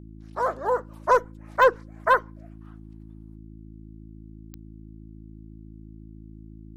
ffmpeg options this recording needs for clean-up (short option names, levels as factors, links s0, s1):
-af "adeclick=t=4,bandreject=f=54:t=h:w=4,bandreject=f=108:t=h:w=4,bandreject=f=162:t=h:w=4,bandreject=f=216:t=h:w=4,bandreject=f=270:t=h:w=4,bandreject=f=324:t=h:w=4"